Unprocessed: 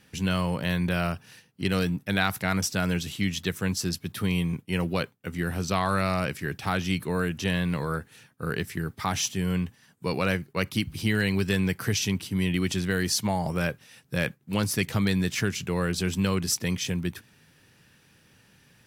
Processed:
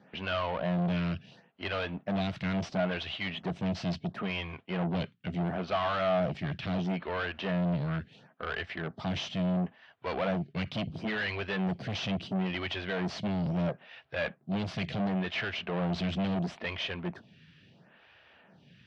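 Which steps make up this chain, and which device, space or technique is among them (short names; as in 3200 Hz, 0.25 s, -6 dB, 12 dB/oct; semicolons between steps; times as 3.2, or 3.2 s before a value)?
vibe pedal into a guitar amplifier (photocell phaser 0.73 Hz; tube stage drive 35 dB, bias 0.5; speaker cabinet 76–3800 Hz, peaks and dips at 110 Hz -4 dB, 180 Hz +3 dB, 300 Hz -4 dB, 460 Hz -3 dB, 660 Hz +10 dB, 3000 Hz +3 dB); gain +6 dB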